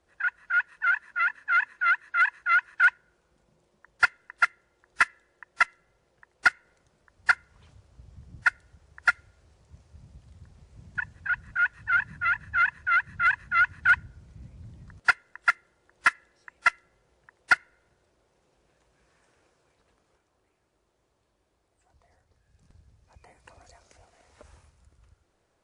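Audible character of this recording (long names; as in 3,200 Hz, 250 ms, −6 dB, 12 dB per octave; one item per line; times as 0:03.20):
background noise floor −73 dBFS
spectral slope +1.0 dB per octave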